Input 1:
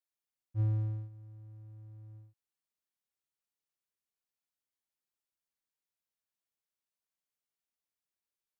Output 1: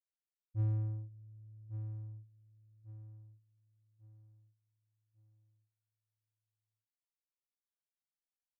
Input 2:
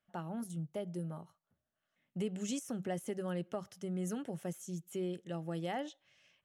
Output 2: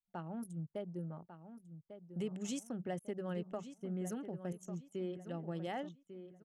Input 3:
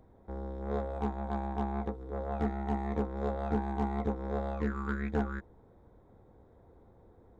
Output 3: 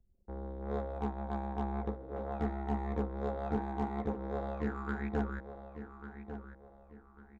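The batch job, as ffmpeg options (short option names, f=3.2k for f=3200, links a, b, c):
-filter_complex "[0:a]anlmdn=0.0158,asplit=2[a][b];[b]adelay=1147,lowpass=f=3.1k:p=1,volume=-10.5dB,asplit=2[c][d];[d]adelay=1147,lowpass=f=3.1k:p=1,volume=0.35,asplit=2[e][f];[f]adelay=1147,lowpass=f=3.1k:p=1,volume=0.35,asplit=2[g][h];[h]adelay=1147,lowpass=f=3.1k:p=1,volume=0.35[i];[a][c][e][g][i]amix=inputs=5:normalize=0,volume=-2.5dB"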